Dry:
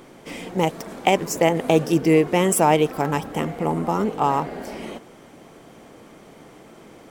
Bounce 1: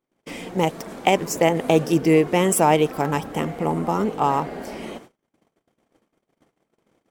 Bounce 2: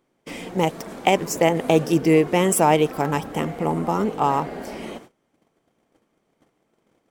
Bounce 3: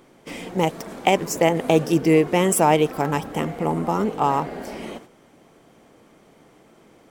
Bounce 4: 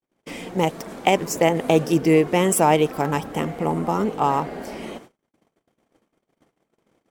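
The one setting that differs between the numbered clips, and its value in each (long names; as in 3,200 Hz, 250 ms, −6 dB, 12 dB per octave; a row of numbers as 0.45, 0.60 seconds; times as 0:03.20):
noise gate, range: −38, −24, −7, −57 decibels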